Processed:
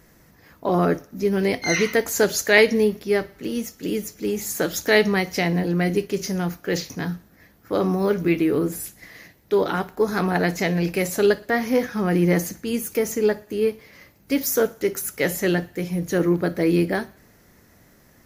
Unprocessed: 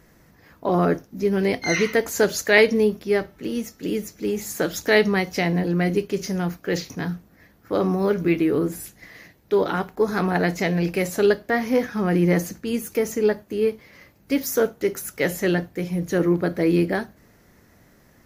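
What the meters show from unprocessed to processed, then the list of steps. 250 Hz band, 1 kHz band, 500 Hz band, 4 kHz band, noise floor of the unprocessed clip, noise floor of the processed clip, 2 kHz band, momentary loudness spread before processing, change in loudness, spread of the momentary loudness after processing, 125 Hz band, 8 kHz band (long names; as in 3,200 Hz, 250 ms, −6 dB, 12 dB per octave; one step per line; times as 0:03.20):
0.0 dB, 0.0 dB, 0.0 dB, +2.0 dB, −56 dBFS, −55 dBFS, +0.5 dB, 9 LU, +0.5 dB, 9 LU, 0.0 dB, +3.5 dB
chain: high-shelf EQ 5,200 Hz +5 dB
on a send: feedback echo with a high-pass in the loop 60 ms, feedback 58%, high-pass 380 Hz, level −22.5 dB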